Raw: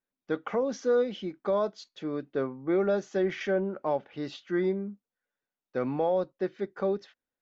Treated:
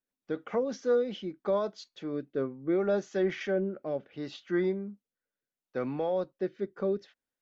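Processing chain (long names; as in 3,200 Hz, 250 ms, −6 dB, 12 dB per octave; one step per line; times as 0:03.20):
rotating-speaker cabinet horn 6.7 Hz, later 0.7 Hz, at 0:00.59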